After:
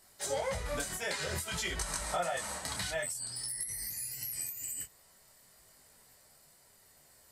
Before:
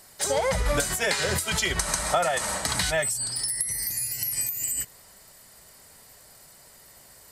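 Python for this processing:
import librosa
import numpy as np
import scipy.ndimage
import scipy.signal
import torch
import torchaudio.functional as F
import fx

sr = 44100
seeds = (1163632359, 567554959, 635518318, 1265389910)

y = fx.detune_double(x, sr, cents=18)
y = y * librosa.db_to_amplitude(-6.5)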